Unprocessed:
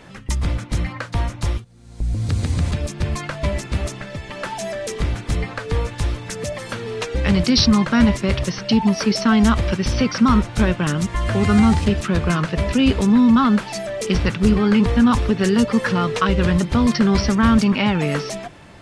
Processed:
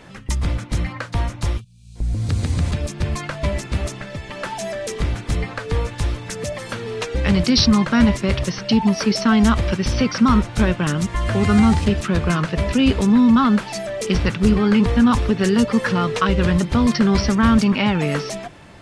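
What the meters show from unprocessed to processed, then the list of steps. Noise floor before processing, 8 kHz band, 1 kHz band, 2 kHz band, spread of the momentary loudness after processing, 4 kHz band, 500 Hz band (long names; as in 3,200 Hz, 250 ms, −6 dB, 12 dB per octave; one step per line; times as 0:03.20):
−39 dBFS, 0.0 dB, 0.0 dB, 0.0 dB, 12 LU, 0.0 dB, 0.0 dB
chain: gain on a spectral selection 0:01.61–0:01.96, 220–2,300 Hz −24 dB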